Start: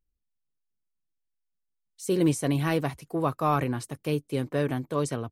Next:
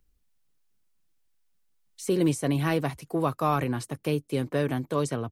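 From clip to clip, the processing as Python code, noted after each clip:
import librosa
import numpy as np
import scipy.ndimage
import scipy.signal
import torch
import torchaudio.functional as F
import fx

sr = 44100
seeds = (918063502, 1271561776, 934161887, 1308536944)

y = fx.band_squash(x, sr, depth_pct=40)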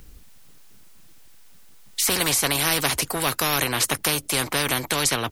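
y = fx.spectral_comp(x, sr, ratio=4.0)
y = y * 10.0 ** (8.5 / 20.0)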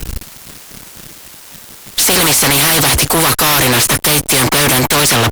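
y = fx.fuzz(x, sr, gain_db=40.0, gate_db=-45.0)
y = y * 10.0 ** (3.5 / 20.0)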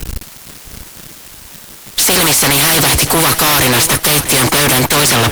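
y = fx.echo_feedback(x, sr, ms=645, feedback_pct=38, wet_db=-12)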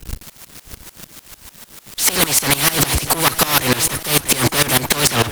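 y = fx.tremolo_decay(x, sr, direction='swelling', hz=6.7, depth_db=19)
y = y * 10.0 ** (1.0 / 20.0)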